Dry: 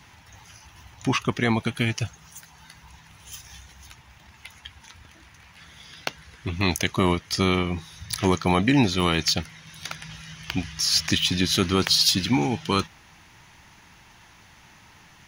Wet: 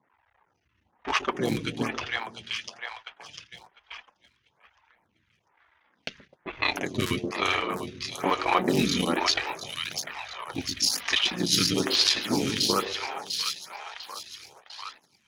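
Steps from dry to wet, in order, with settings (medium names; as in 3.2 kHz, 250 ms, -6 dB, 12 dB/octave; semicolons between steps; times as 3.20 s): cycle switcher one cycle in 3, muted; high-pass 150 Hz 6 dB/octave; bass shelf 380 Hz -6 dB; level-controlled noise filter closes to 1.5 kHz, open at -22 dBFS; two-band feedback delay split 630 Hz, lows 127 ms, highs 698 ms, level -6 dB; flange 0.2 Hz, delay 0.3 ms, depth 9.5 ms, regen -32%; gate -51 dBFS, range -13 dB; 2.00–4.52 s: graphic EQ with 31 bands 3.15 kHz +6 dB, 5 kHz +6 dB, 12.5 kHz -12 dB; lamp-driven phase shifter 1.1 Hz; trim +7.5 dB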